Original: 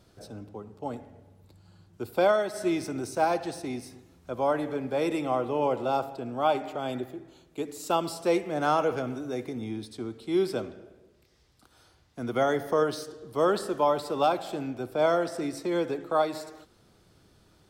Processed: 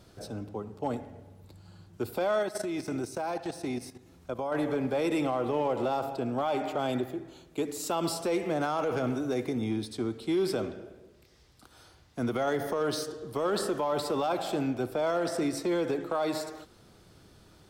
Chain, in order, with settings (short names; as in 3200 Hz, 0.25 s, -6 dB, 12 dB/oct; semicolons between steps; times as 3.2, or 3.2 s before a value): limiter -24.5 dBFS, peak gain reduction 11.5 dB; 2.43–4.52 level quantiser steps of 12 dB; hard clip -26 dBFS, distortion -28 dB; gain +4 dB